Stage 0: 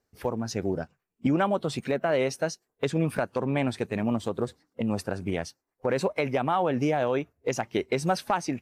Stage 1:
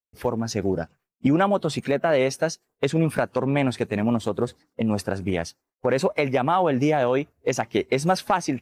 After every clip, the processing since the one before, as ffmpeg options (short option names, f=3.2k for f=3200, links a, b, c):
-af "agate=range=-33dB:threshold=-57dB:ratio=3:detection=peak,volume=4.5dB"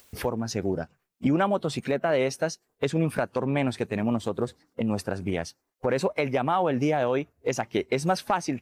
-af "acompressor=mode=upward:threshold=-23dB:ratio=2.5,volume=-3.5dB"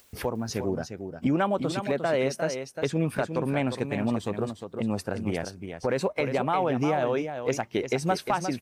-af "aecho=1:1:354:0.398,volume=-1.5dB"